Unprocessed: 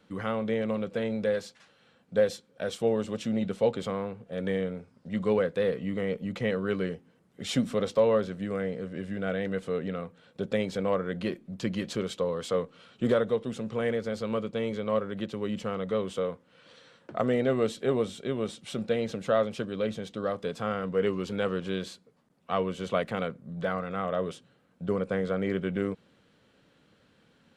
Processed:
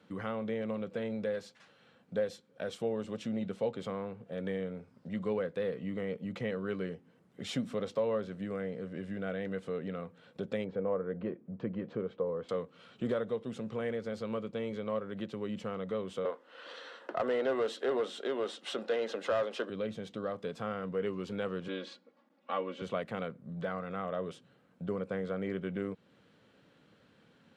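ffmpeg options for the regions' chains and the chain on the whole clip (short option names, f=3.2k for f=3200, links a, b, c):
-filter_complex "[0:a]asettb=1/sr,asplit=3[a][b][c];[a]atrim=end=10.644[d];[b]atrim=start=10.64:end=12.49,asetpts=PTS-STARTPTS,afade=t=in:d=0.004:c=qsin,afade=t=out:st=1.846:d=0.004:c=qsin,lowpass=1.4k,equalizer=f=470:t=o:w=0.22:g=6.5[e];[c]atrim=start=12.486[f];[d][e]acrossfade=d=0.004:c1=hsin:c2=qsin[g];[g][f]acrossfade=d=0.004:c1=qsin:c2=hsin,asettb=1/sr,asplit=3[h][i][j];[h]atrim=end=16.254[k];[i]atrim=start=16.25:end=19.7,asetpts=PTS-STARTPTS,afade=t=in:d=0.004:c=qsin,afade=t=out:st=3.446:d=0.004:c=qsin,highpass=f=270:w=0.5412,highpass=f=270:w=1.3066,asplit=2[l][m];[m]highpass=f=720:p=1,volume=18dB,asoftclip=type=tanh:threshold=-13.5dB[n];[l][n]amix=inputs=2:normalize=0,lowpass=f=2.9k:p=1,volume=-6dB,bandreject=f=2.3k:w=8.5[o];[j]atrim=start=19.696[p];[k][o]acrossfade=d=0.004:c1=hsin:c2=qsin[q];[q][p]acrossfade=d=0.004:c1=qsin:c2=hsin,asettb=1/sr,asplit=3[r][s][t];[r]atrim=end=21.684[u];[s]atrim=start=21.68:end=22.82,asetpts=PTS-STARTPTS,afade=t=in:d=0.004:c=qsin,afade=t=out:st=1.136:d=0.004:c=qsin,highpass=280,lowpass=4.4k,aecho=1:1:3.6:0.91,atrim=end_sample=50274[v];[t]atrim=start=22.816[w];[u][v]acrossfade=d=0.004:c1=hsin:c2=qsin[x];[x][w]acrossfade=d=0.004:c1=qsin:c2=hsin,highpass=81,acompressor=threshold=-43dB:ratio=1.5,highshelf=f=4.9k:g=-6.5"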